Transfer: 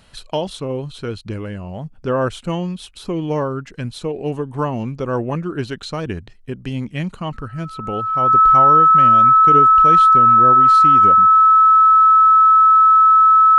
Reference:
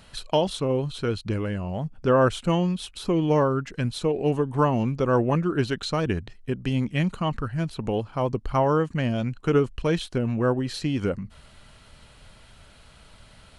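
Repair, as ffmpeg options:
-af "bandreject=f=1.3k:w=30"

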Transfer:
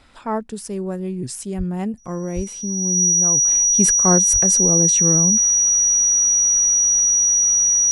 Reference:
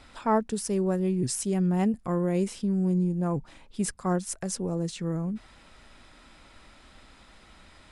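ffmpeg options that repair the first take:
-filter_complex "[0:a]bandreject=f=5.8k:w=30,asplit=3[a][b][c];[a]afade=t=out:st=1.57:d=0.02[d];[b]highpass=f=140:w=0.5412,highpass=f=140:w=1.3066,afade=t=in:st=1.57:d=0.02,afade=t=out:st=1.69:d=0.02[e];[c]afade=t=in:st=1.69:d=0.02[f];[d][e][f]amix=inputs=3:normalize=0,asplit=3[g][h][i];[g]afade=t=out:st=2.35:d=0.02[j];[h]highpass=f=140:w=0.5412,highpass=f=140:w=1.3066,afade=t=in:st=2.35:d=0.02,afade=t=out:st=2.47:d=0.02[k];[i]afade=t=in:st=2.47:d=0.02[l];[j][k][l]amix=inputs=3:normalize=0,asplit=3[m][n][o];[m]afade=t=out:st=4.32:d=0.02[p];[n]highpass=f=140:w=0.5412,highpass=f=140:w=1.3066,afade=t=in:st=4.32:d=0.02,afade=t=out:st=4.44:d=0.02[q];[o]afade=t=in:st=4.44:d=0.02[r];[p][q][r]amix=inputs=3:normalize=0,asetnsamples=n=441:p=0,asendcmd='3.45 volume volume -9.5dB',volume=0dB"

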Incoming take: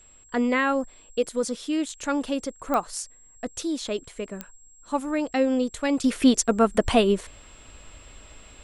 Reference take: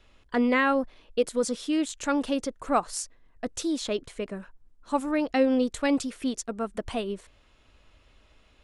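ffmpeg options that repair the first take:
-af "adeclick=t=4,bandreject=f=7.6k:w=30,asetnsamples=n=441:p=0,asendcmd='6.04 volume volume -11.5dB',volume=0dB"

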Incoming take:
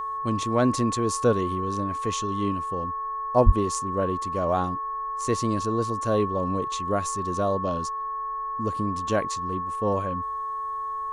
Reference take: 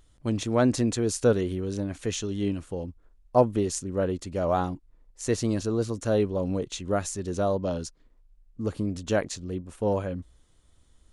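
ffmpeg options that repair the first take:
-filter_complex "[0:a]bandreject=f=437.4:t=h:w=4,bandreject=f=874.8:t=h:w=4,bandreject=f=1.3122k:t=h:w=4,bandreject=f=1.7496k:t=h:w=4,bandreject=f=1.1k:w=30,asplit=3[a][b][c];[a]afade=t=out:st=3.45:d=0.02[d];[b]highpass=f=140:w=0.5412,highpass=f=140:w=1.3066,afade=t=in:st=3.45:d=0.02,afade=t=out:st=3.57:d=0.02[e];[c]afade=t=in:st=3.57:d=0.02[f];[d][e][f]amix=inputs=3:normalize=0"

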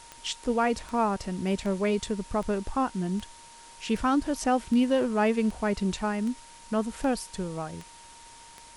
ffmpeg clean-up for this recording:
-af "adeclick=t=4,bandreject=f=930:w=30,afftdn=nr=23:nf=-50"

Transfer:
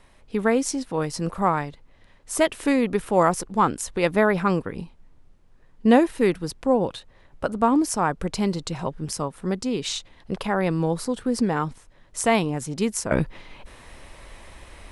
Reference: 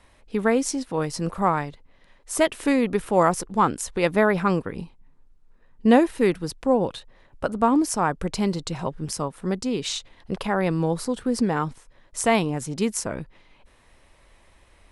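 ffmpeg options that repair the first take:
-af "agate=range=-21dB:threshold=-43dB,asetnsamples=n=441:p=0,asendcmd='13.11 volume volume -11.5dB',volume=0dB"

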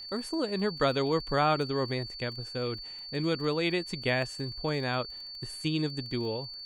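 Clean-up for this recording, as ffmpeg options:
-af "adeclick=t=4,bandreject=f=4.5k:w=30"

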